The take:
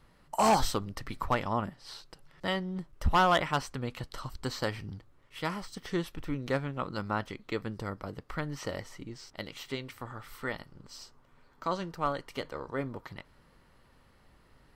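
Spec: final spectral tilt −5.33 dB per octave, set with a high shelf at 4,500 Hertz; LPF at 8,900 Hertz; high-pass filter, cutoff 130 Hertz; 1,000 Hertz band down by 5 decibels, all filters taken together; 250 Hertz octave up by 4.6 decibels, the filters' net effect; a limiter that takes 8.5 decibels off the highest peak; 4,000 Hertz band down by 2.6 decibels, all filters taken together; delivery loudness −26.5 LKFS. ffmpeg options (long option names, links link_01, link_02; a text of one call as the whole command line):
ffmpeg -i in.wav -af "highpass=130,lowpass=8900,equalizer=frequency=250:width_type=o:gain=7,equalizer=frequency=1000:width_type=o:gain=-7,equalizer=frequency=4000:width_type=o:gain=-5.5,highshelf=frequency=4500:gain=5,volume=10dB,alimiter=limit=-12dB:level=0:latency=1" out.wav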